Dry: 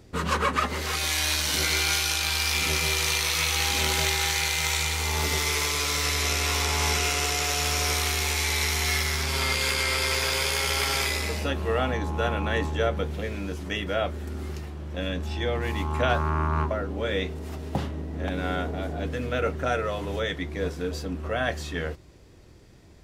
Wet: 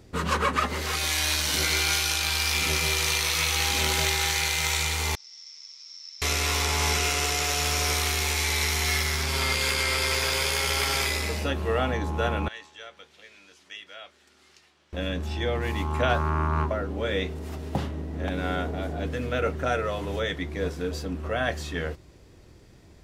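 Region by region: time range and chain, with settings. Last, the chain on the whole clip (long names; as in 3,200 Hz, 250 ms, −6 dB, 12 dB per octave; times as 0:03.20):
0:05.15–0:06.22: resonant band-pass 5,400 Hz, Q 20 + high-frequency loss of the air 110 metres
0:12.48–0:14.93: low-pass filter 4,600 Hz + first difference
whole clip: no processing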